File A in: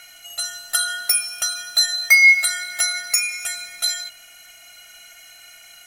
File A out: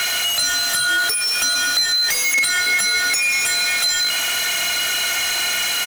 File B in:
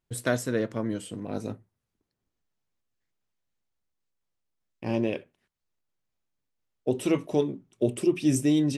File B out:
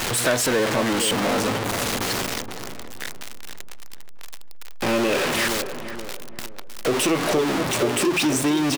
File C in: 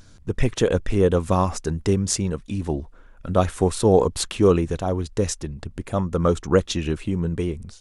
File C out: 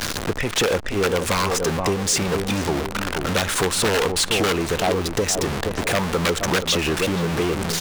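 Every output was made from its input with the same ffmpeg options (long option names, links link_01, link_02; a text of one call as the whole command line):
ffmpeg -i in.wav -filter_complex "[0:a]aeval=exprs='val(0)+0.5*0.075*sgn(val(0))':channel_layout=same,asplit=2[link_01][link_02];[link_02]adelay=473,lowpass=frequency=1000:poles=1,volume=-9dB,asplit=2[link_03][link_04];[link_04]adelay=473,lowpass=frequency=1000:poles=1,volume=0.38,asplit=2[link_05][link_06];[link_06]adelay=473,lowpass=frequency=1000:poles=1,volume=0.38,asplit=2[link_07][link_08];[link_08]adelay=473,lowpass=frequency=1000:poles=1,volume=0.38[link_09];[link_01][link_03][link_05][link_07][link_09]amix=inputs=5:normalize=0,acrossover=split=410|3800[link_10][link_11][link_12];[link_11]aeval=exprs='(mod(5.31*val(0)+1,2)-1)/5.31':channel_layout=same[link_13];[link_10][link_13][link_12]amix=inputs=3:normalize=0,acompressor=threshold=-20dB:ratio=6,asplit=2[link_14][link_15];[link_15]highpass=frequency=720:poles=1,volume=16dB,asoftclip=type=tanh:threshold=-9dB[link_16];[link_14][link_16]amix=inputs=2:normalize=0,lowpass=frequency=6200:poles=1,volume=-6dB" out.wav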